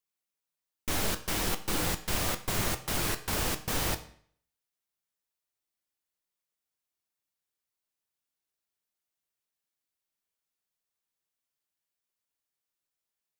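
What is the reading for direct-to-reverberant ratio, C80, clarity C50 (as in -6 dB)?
8.5 dB, 17.0 dB, 14.0 dB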